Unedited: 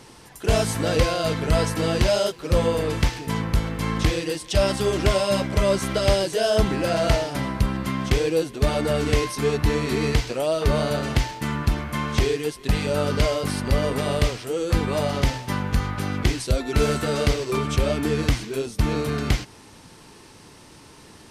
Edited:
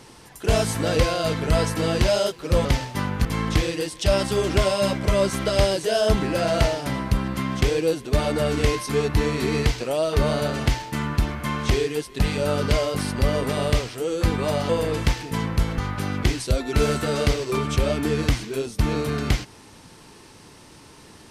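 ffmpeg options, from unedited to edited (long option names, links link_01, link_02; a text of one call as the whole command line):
ffmpeg -i in.wav -filter_complex "[0:a]asplit=5[link_01][link_02][link_03][link_04][link_05];[link_01]atrim=end=2.652[link_06];[link_02]atrim=start=15.178:end=15.782[link_07];[link_03]atrim=start=3.738:end=15.182[link_08];[link_04]atrim=start=2.648:end=3.742[link_09];[link_05]atrim=start=15.778[link_10];[link_06][link_07]acrossfade=duration=0.004:curve1=hsin:curve2=hsin[link_11];[link_11][link_08]acrossfade=duration=0.004:curve1=hsin:curve2=hsin[link_12];[link_12][link_09]acrossfade=duration=0.004:curve1=hsin:curve2=hsin[link_13];[link_13][link_10]acrossfade=duration=0.004:curve1=hsin:curve2=hsin" out.wav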